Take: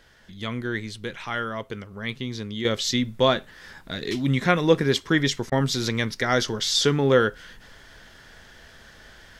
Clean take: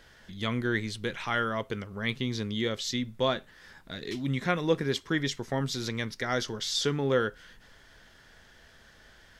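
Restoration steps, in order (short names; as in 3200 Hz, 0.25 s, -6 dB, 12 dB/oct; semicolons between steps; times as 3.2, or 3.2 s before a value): interpolate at 5.5, 18 ms; gain correction -7.5 dB, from 2.65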